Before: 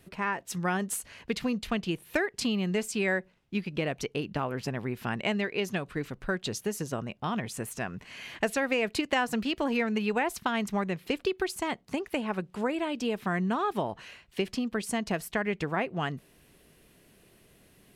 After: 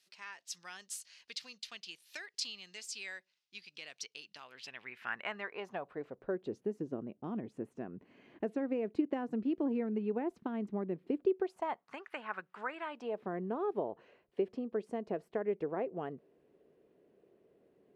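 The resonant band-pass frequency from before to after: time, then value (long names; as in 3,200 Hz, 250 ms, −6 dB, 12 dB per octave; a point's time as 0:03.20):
resonant band-pass, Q 2.1
0:04.42 5,000 Hz
0:05.12 1,600 Hz
0:06.60 320 Hz
0:11.22 320 Hz
0:11.95 1,400 Hz
0:12.84 1,400 Hz
0:13.26 440 Hz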